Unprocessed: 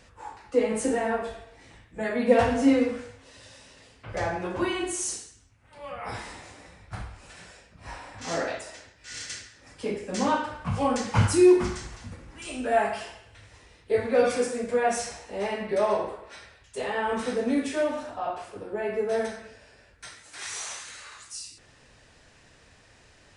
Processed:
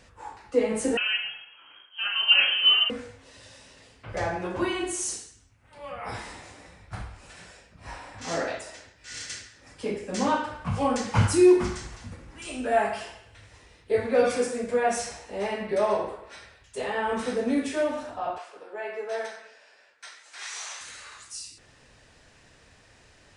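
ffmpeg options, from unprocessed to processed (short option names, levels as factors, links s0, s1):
-filter_complex "[0:a]asettb=1/sr,asplit=3[s0][s1][s2];[s0]atrim=end=0.974[s3];[s1]atrim=start=0.97:end=2.9,asetpts=PTS-STARTPTS,afade=t=in:d=0.004:c=qsin,afade=t=out:st=1.926:d=0.004:c=qsin,lowpass=f=2800:t=q:w=0.5098,lowpass=f=2800:t=q:w=0.6013,lowpass=f=2800:t=q:w=0.9,lowpass=f=2800:t=q:w=2.563,afreqshift=-3300[s4];[s2]atrim=start=2.896[s5];[s3][s4]acrossfade=d=0.004:c1=hsin:c2=qsin[s6];[s6][s5]acrossfade=d=0.004:c1=qsin:c2=hsin,asettb=1/sr,asplit=3[s7][s8][s9];[s7]atrim=end=18.384[s10];[s8]atrim=start=18.38:end=20.81,asetpts=PTS-STARTPTS,afade=t=in:d=0.004:c=qsin,afade=t=out:st=2.426:d=0.004:c=qsin,highpass=630,lowpass=7000[s11];[s9]atrim=start=20.806[s12];[s10][s11]acrossfade=d=0.004:c1=hsin:c2=qsin[s13];[s13][s12]acrossfade=d=0.004:c1=qsin:c2=hsin"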